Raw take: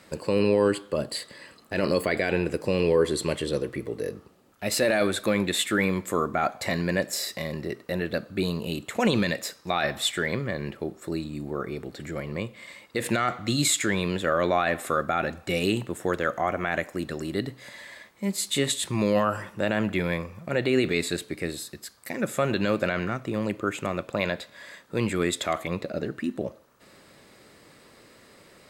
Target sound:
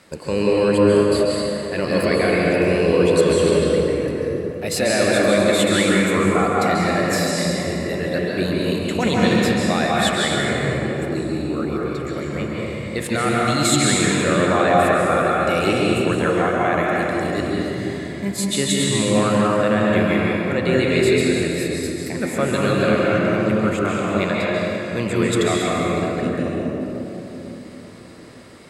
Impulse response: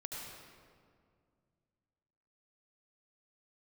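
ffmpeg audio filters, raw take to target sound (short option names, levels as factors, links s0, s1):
-filter_complex "[0:a]asettb=1/sr,asplit=3[s0][s1][s2];[s0]atrim=end=3.594[s3];[s1]atrim=start=3.59:end=4.08,asetpts=PTS-STARTPTS,afade=t=in:d=0.004:c=qsin,afade=t=out:st=0.486:d=0.004:c=qsin,acrossover=split=3800[s4][s5];[s5]acompressor=threshold=0.00141:ratio=4:attack=1:release=60[s6];[s4][s6]amix=inputs=2:normalize=0[s7];[s2]atrim=start=4.076[s8];[s3][s7]acrossfade=d=0.004:c1=hsin:c2=qsin[s9];[s9][s8]acrossfade=d=0.004:c1=qsin:c2=hsin[s10];[1:a]atrim=start_sample=2205,asetrate=22932,aresample=44100[s11];[s10][s11]afir=irnorm=-1:irlink=0,volume=1.58"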